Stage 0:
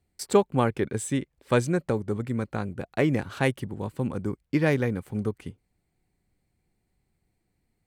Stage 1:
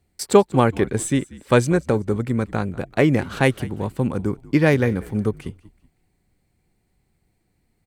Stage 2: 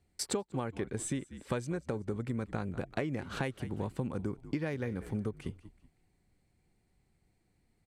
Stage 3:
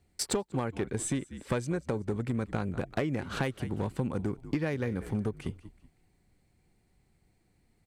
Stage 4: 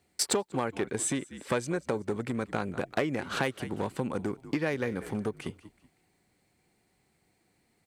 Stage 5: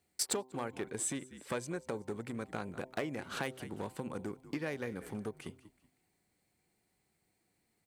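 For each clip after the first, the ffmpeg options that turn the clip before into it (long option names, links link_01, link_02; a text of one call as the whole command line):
ffmpeg -i in.wav -filter_complex "[0:a]asplit=4[link_01][link_02][link_03][link_04];[link_02]adelay=189,afreqshift=-59,volume=-20.5dB[link_05];[link_03]adelay=378,afreqshift=-118,volume=-30.1dB[link_06];[link_04]adelay=567,afreqshift=-177,volume=-39.8dB[link_07];[link_01][link_05][link_06][link_07]amix=inputs=4:normalize=0,volume=6.5dB" out.wav
ffmpeg -i in.wav -af "lowpass=11000,acompressor=threshold=-26dB:ratio=12,volume=-5dB" out.wav
ffmpeg -i in.wav -af "aeval=exprs='clip(val(0),-1,0.0376)':channel_layout=same,volume=4dB" out.wav
ffmpeg -i in.wav -af "highpass=frequency=350:poles=1,volume=4.5dB" out.wav
ffmpeg -i in.wav -af "highshelf=frequency=9000:gain=8,bandreject=frequency=128.9:width_type=h:width=4,bandreject=frequency=257.8:width_type=h:width=4,bandreject=frequency=386.7:width_type=h:width=4,bandreject=frequency=515.6:width_type=h:width=4,bandreject=frequency=644.5:width_type=h:width=4,bandreject=frequency=773.4:width_type=h:width=4,bandreject=frequency=902.3:width_type=h:width=4,bandreject=frequency=1031.2:width_type=h:width=4,volume=-8dB" out.wav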